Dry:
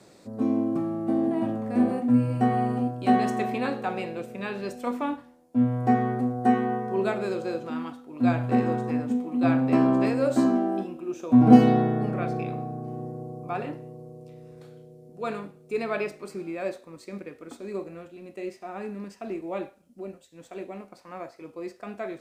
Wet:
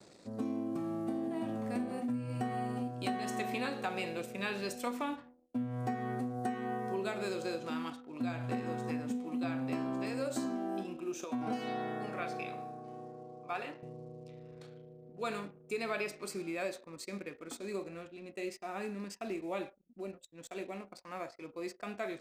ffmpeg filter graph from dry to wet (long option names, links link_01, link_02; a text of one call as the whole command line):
ffmpeg -i in.wav -filter_complex "[0:a]asettb=1/sr,asplit=3[link_01][link_02][link_03];[link_01]atrim=end=11.244[link_04];[link_02]atrim=start=11.24:end=13.83,asetpts=PTS-STARTPTS,afade=type=in:duration=0.004:curve=qsin,afade=type=out:start_time=2.586:duration=0.004:curve=qsin,highpass=frequency=690:poles=1,highshelf=frequency=6100:gain=-6.5[link_05];[link_03]atrim=start=13.826[link_06];[link_04][link_05]acrossfade=duration=0.004:curve1=hsin:curve2=qsin[link_07];[link_07][link_06]acrossfade=duration=0.004:curve1=qsin:curve2=hsin,acompressor=threshold=-28dB:ratio=10,anlmdn=0.000631,highshelf=frequency=2200:gain=12,volume=-5dB" out.wav